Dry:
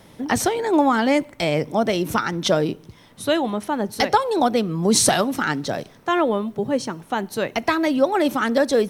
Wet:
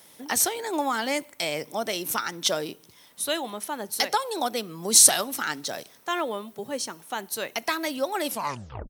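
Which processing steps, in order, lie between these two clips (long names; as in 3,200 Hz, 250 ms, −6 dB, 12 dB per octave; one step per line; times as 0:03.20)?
turntable brake at the end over 0.63 s
RIAA equalisation recording
level −7 dB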